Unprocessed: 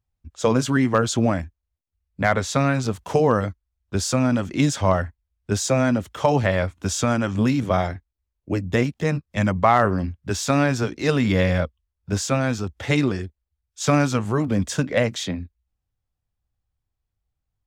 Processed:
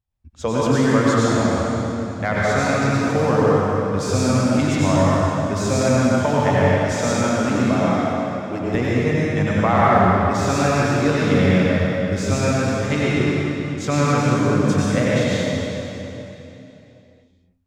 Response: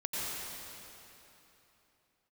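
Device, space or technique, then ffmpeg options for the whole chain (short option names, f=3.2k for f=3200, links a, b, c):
swimming-pool hall: -filter_complex "[1:a]atrim=start_sample=2205[a];[0:a][a]afir=irnorm=-1:irlink=0,highshelf=f=5.6k:g=-5,asettb=1/sr,asplit=3[b][c][d];[b]atrim=end=6.924[e];[c]atrim=start=6.92:end=8.75,asetpts=PTS-STARTPTS,afade=t=in:d=0.004:c=qsin,afade=t=out:st=1.826:d=0.004:c=qsin,highpass=130[f];[d]atrim=start=8.746[g];[e][f]acrossfade=d=0.004:c1=hsin:c2=qsin[h];[h][g]acrossfade=d=0.004:c1=qsin:c2=hsin,volume=-1.5dB"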